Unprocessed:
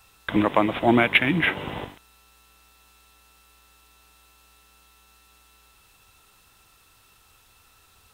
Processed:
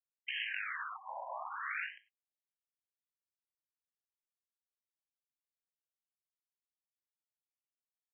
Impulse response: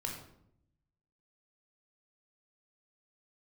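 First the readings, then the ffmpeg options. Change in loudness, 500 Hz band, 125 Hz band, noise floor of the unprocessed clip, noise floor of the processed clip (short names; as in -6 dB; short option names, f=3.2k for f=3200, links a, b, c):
-18.0 dB, -28.0 dB, under -40 dB, -58 dBFS, under -85 dBFS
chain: -filter_complex "[0:a]flanger=delay=16:depth=3.4:speed=0.76,aeval=exprs='sgn(val(0))*max(abs(val(0))-0.00841,0)':c=same,acompressor=threshold=-27dB:ratio=3,asplit=2[a][b];[1:a]atrim=start_sample=2205,afade=t=out:st=0.16:d=0.01,atrim=end_sample=7497,highshelf=f=2.3k:g=-2[c];[b][c]afir=irnorm=-1:irlink=0,volume=0dB[d];[a][d]amix=inputs=2:normalize=0,afftfilt=real='re*lt(hypot(re,im),0.0316)':imag='im*lt(hypot(re,im),0.0316)':win_size=1024:overlap=0.75,afftfilt=real='re*between(b*sr/1024,740*pow(2300/740,0.5+0.5*sin(2*PI*0.61*pts/sr))/1.41,740*pow(2300/740,0.5+0.5*sin(2*PI*0.61*pts/sr))*1.41)':imag='im*between(b*sr/1024,740*pow(2300/740,0.5+0.5*sin(2*PI*0.61*pts/sr))/1.41,740*pow(2300/740,0.5+0.5*sin(2*PI*0.61*pts/sr))*1.41)':win_size=1024:overlap=0.75,volume=8dB"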